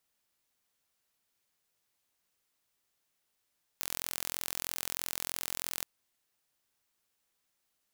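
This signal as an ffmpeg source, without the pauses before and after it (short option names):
-f lavfi -i "aevalsrc='0.398*eq(mod(n,1023),0)':d=2.03:s=44100"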